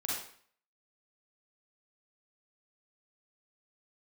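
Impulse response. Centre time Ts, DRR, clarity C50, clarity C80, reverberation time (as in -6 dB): 61 ms, -5.5 dB, -1.0 dB, 4.0 dB, 0.55 s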